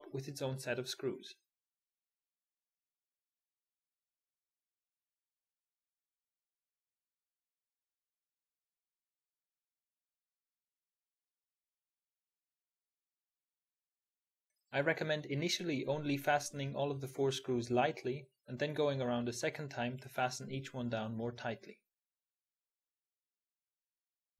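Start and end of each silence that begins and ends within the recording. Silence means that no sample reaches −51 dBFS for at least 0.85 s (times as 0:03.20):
0:01.32–0:14.73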